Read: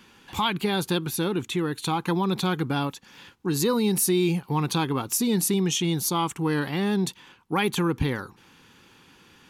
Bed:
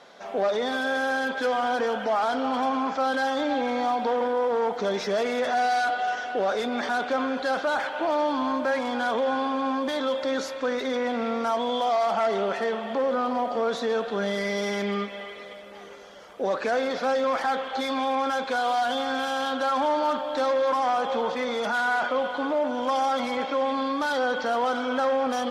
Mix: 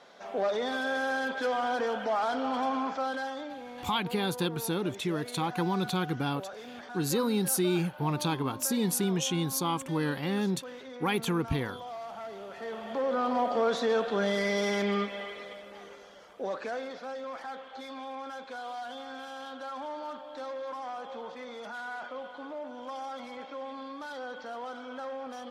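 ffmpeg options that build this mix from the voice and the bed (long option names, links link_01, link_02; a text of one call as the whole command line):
ffmpeg -i stem1.wav -i stem2.wav -filter_complex "[0:a]adelay=3500,volume=-5dB[link_01];[1:a]volume=11.5dB,afade=type=out:start_time=2.79:duration=0.78:silence=0.237137,afade=type=in:start_time=12.51:duration=0.93:silence=0.158489,afade=type=out:start_time=15.22:duration=1.81:silence=0.211349[link_02];[link_01][link_02]amix=inputs=2:normalize=0" out.wav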